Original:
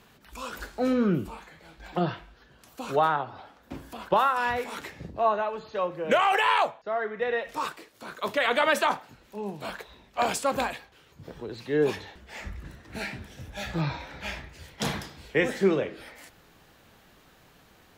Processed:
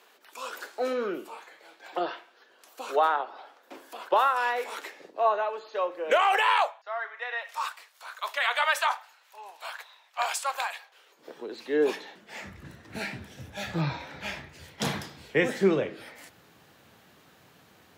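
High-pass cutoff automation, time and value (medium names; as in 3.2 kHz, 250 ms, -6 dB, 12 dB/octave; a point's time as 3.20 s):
high-pass 24 dB/octave
6.23 s 370 Hz
6.88 s 780 Hz
10.71 s 780 Hz
11.39 s 260 Hz
11.97 s 260 Hz
12.62 s 86 Hz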